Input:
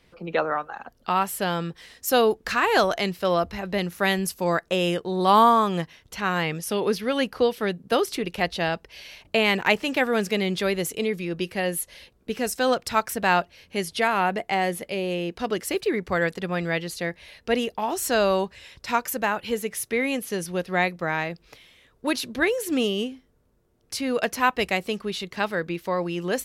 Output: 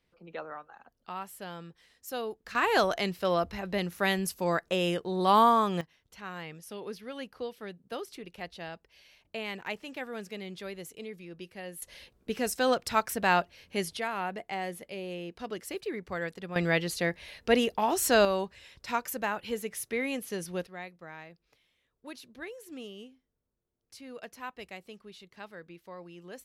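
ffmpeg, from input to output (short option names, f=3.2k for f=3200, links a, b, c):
-af "asetnsamples=n=441:p=0,asendcmd='2.55 volume volume -5dB;5.81 volume volume -16dB;11.82 volume volume -4dB;13.97 volume volume -11dB;16.56 volume volume -0.5dB;18.25 volume volume -7dB;20.67 volume volume -19.5dB',volume=-16dB"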